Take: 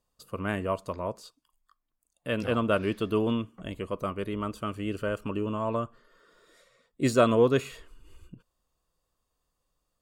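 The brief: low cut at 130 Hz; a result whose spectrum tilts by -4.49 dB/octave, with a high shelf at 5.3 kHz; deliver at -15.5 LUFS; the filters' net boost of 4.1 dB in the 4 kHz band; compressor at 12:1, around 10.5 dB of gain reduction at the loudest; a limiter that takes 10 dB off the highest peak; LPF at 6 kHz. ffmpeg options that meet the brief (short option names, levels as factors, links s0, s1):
-af "highpass=130,lowpass=6000,equalizer=f=4000:t=o:g=7.5,highshelf=f=5300:g=-3,acompressor=threshold=0.0501:ratio=12,volume=13.3,alimiter=limit=0.708:level=0:latency=1"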